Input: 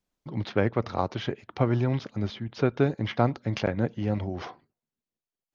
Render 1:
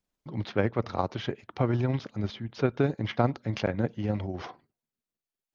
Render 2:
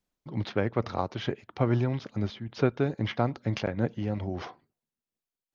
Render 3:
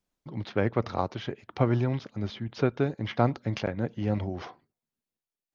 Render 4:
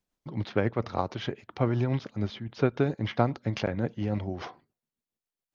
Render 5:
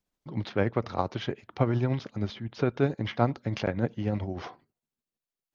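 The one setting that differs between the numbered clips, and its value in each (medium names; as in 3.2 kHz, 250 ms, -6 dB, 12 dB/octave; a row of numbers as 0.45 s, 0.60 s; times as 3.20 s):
tremolo, rate: 20 Hz, 2.3 Hz, 1.2 Hz, 7.2 Hz, 13 Hz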